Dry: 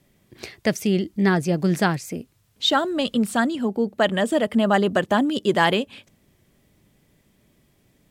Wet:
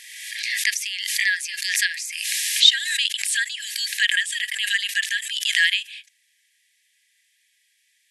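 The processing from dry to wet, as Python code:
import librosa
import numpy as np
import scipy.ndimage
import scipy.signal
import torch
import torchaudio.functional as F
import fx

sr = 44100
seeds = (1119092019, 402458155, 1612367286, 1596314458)

y = fx.rider(x, sr, range_db=10, speed_s=2.0)
y = fx.brickwall_bandpass(y, sr, low_hz=1600.0, high_hz=12000.0)
y = fx.pre_swell(y, sr, db_per_s=39.0)
y = F.gain(torch.from_numpy(y), 6.5).numpy()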